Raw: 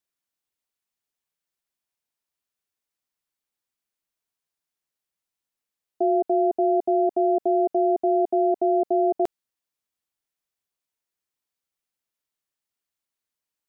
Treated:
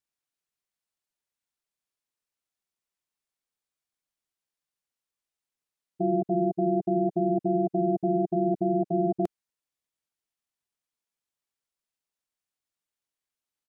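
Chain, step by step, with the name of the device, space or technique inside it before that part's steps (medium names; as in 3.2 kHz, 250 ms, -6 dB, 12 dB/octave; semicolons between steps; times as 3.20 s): octave pedal (harmony voices -12 st 0 dB); trim -7 dB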